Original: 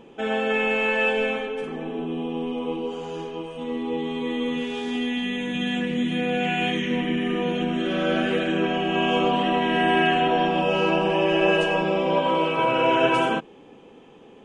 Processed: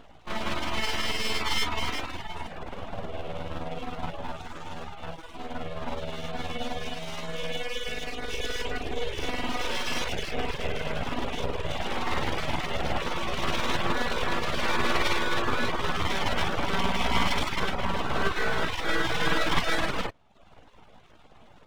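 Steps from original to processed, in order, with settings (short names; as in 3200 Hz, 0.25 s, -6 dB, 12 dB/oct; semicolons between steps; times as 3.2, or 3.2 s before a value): granular stretch 1.5×, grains 0.105 s; full-wave rectifier; reverb removal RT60 0.61 s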